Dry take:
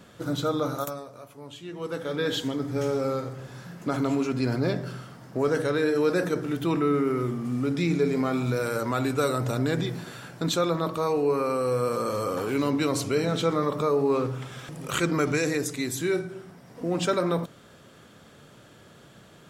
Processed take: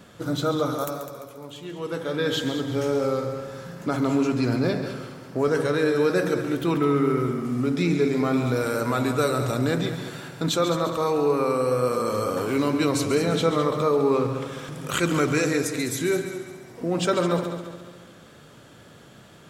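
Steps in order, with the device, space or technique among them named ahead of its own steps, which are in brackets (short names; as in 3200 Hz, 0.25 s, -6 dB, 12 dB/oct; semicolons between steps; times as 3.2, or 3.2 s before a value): multi-head tape echo (multi-head echo 69 ms, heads second and third, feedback 48%, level -11 dB; wow and flutter 21 cents); gain +2 dB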